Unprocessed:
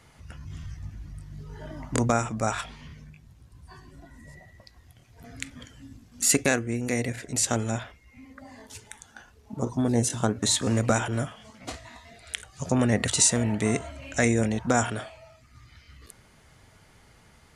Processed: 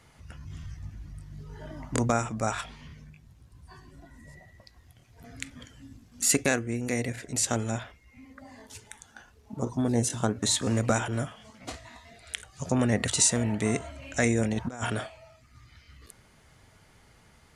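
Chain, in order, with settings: 14.52–15.07 negative-ratio compressor -28 dBFS, ratio -0.5; gain -2 dB

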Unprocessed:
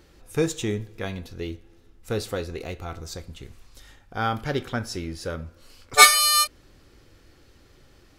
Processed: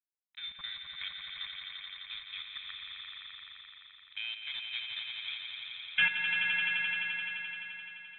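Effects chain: HPF 320 Hz 12 dB/oct; level quantiser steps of 17 dB; sample gate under -39 dBFS; fixed phaser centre 700 Hz, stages 8; on a send: swelling echo 86 ms, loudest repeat 5, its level -7 dB; on the sum: inverted band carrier 3900 Hz; gain -2 dB

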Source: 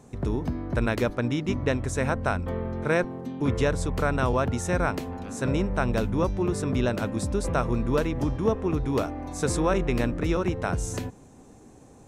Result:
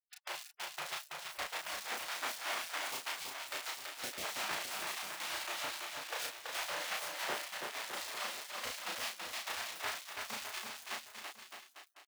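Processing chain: random spectral dropouts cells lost 81%; in parallel at +1 dB: compressor 8:1, threshold -38 dBFS, peak gain reduction 17.5 dB; on the sum: Butterworth band-stop 670 Hz, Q 2; air absorption 400 m; spring tank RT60 1.6 s, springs 35 ms, chirp 65 ms, DRR 9 dB; bit-crush 6-bit; limiter -21.5 dBFS, peak gain reduction 8.5 dB; spectral gate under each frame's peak -25 dB weak; HPF 110 Hz 6 dB/oct; high shelf 3900 Hz -10 dB; doubler 34 ms -3 dB; bouncing-ball echo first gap 0.33 s, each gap 0.85×, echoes 5; gain +8 dB

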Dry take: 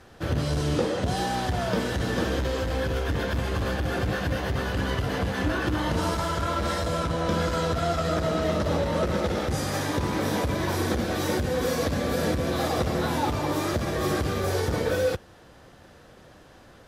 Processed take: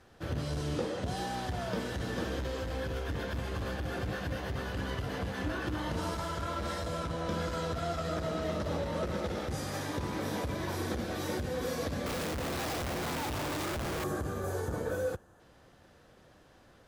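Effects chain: 13.66–15.4 spectral gain 1800–6000 Hz -9 dB; 12.06–14.04 Schmitt trigger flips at -41.5 dBFS; gain -8.5 dB

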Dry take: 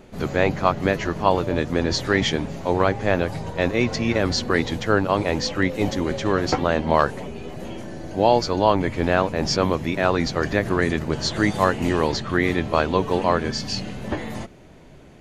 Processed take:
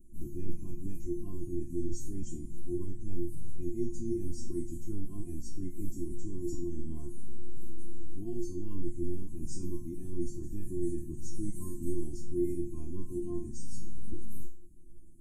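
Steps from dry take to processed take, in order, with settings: elliptic band-stop 250–8500 Hz, stop band 40 dB; low shelf 130 Hz +5 dB; resonator 350 Hz, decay 0.38 s, harmonics all, mix 100%; gain +13 dB

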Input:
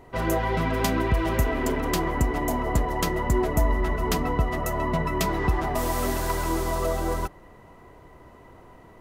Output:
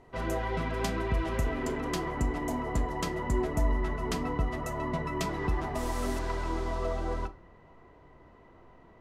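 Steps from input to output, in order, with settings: LPF 9300 Hz 12 dB/oct, from 6.19 s 4600 Hz; reverb RT60 0.45 s, pre-delay 5 ms, DRR 11.5 dB; gain -7 dB

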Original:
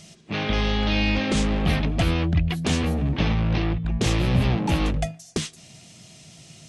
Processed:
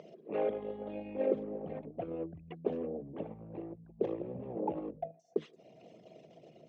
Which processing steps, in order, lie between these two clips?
formant sharpening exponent 2; in parallel at -0.5 dB: upward compressor, threshold -24 dBFS; on the sum: ladder band-pass 580 Hz, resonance 50%; gain +2 dB

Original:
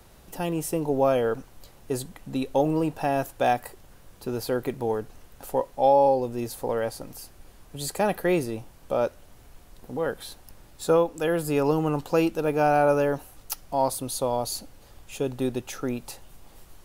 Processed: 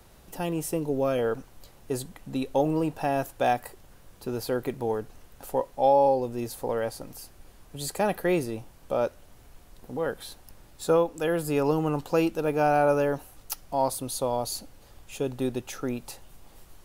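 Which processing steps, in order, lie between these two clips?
0.79–1.19 bell 820 Hz -9.5 dB 0.72 oct; gain -1.5 dB

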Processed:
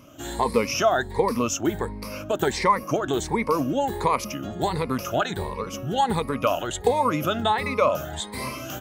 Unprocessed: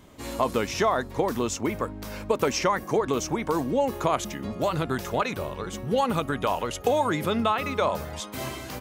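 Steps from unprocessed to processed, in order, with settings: moving spectral ripple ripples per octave 0.91, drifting +1.4 Hz, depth 15 dB

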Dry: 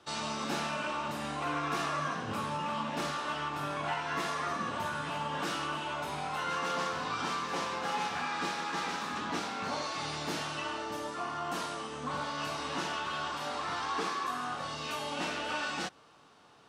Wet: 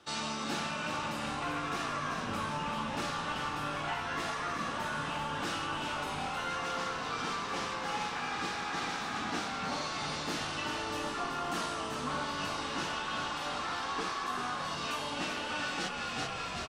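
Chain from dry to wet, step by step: thirty-one-band EQ 125 Hz -7 dB, 400 Hz -3 dB, 630 Hz -4 dB, 1000 Hz -4 dB, 12500 Hz -5 dB; frequency-shifting echo 0.384 s, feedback 53%, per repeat -54 Hz, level -7 dB; vocal rider 0.5 s

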